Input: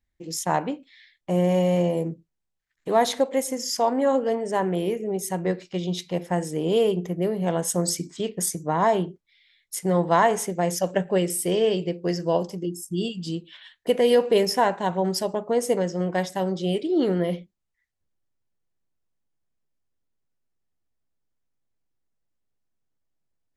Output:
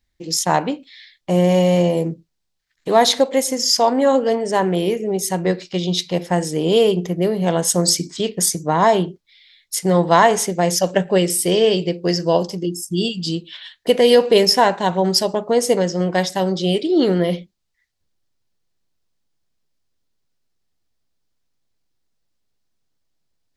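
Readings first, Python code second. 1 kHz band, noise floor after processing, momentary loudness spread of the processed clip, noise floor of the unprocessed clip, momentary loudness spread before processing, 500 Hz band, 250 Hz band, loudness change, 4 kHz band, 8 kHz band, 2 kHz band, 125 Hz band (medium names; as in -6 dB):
+6.0 dB, -73 dBFS, 10 LU, -79 dBFS, 9 LU, +6.0 dB, +6.0 dB, +6.5 dB, +12.0 dB, +8.5 dB, +7.5 dB, +6.0 dB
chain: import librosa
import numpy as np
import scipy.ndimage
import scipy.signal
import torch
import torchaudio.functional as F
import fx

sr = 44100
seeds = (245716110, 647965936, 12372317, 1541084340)

y = fx.peak_eq(x, sr, hz=4500.0, db=8.0, octaves=1.1)
y = y * 10.0 ** (6.0 / 20.0)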